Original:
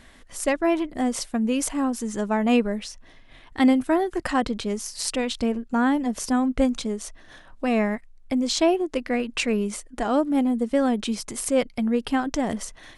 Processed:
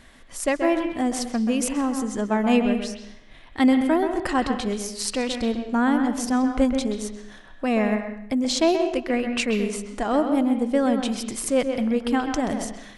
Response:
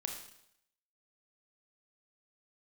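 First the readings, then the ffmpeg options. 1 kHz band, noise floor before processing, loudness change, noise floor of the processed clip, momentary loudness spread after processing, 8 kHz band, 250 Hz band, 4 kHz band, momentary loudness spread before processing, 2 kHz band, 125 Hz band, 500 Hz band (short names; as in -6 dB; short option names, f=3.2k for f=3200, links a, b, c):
+1.0 dB, -50 dBFS, +1.0 dB, -46 dBFS, 8 LU, 0.0 dB, +1.0 dB, +0.5 dB, 8 LU, +1.0 dB, n/a, +1.0 dB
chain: -filter_complex "[0:a]asplit=2[a][b];[1:a]atrim=start_sample=2205,lowpass=3.9k,adelay=130[c];[b][c]afir=irnorm=-1:irlink=0,volume=-5.5dB[d];[a][d]amix=inputs=2:normalize=0"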